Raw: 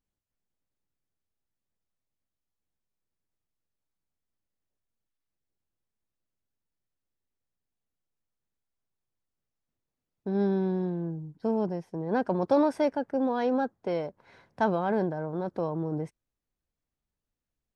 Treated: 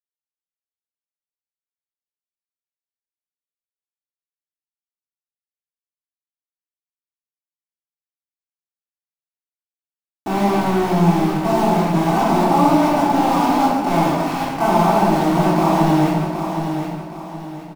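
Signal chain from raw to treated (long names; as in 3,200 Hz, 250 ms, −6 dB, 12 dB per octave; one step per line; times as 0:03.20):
compressor on every frequency bin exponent 0.4
Bessel low-pass filter 3,400 Hz
parametric band 160 Hz −3 dB 0.86 octaves
comb filter 6 ms, depth 37%
dynamic equaliser 630 Hz, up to +5 dB, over −33 dBFS, Q 1.5
in parallel at +2.5 dB: downward compressor 5 to 1, threshold −37 dBFS, peak gain reduction 21 dB
on the sum: phaser with its sweep stopped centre 2,500 Hz, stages 8
centre clipping without the shift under −31 dBFS
on a send: repeating echo 769 ms, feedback 36%, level −7.5 dB
on the sum: rectangular room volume 550 cubic metres, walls mixed, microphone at 3.5 metres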